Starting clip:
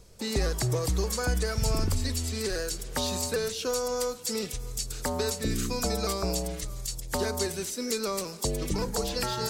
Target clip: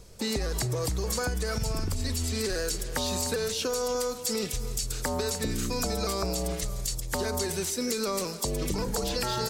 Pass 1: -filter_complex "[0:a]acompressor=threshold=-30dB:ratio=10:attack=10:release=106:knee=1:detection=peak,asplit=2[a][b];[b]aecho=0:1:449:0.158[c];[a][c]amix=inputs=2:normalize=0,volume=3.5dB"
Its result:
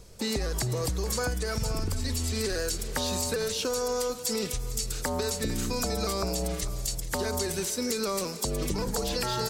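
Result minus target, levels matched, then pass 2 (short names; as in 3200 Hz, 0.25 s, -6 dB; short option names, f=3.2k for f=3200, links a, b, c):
echo 0.15 s late
-filter_complex "[0:a]acompressor=threshold=-30dB:ratio=10:attack=10:release=106:knee=1:detection=peak,asplit=2[a][b];[b]aecho=0:1:299:0.158[c];[a][c]amix=inputs=2:normalize=0,volume=3.5dB"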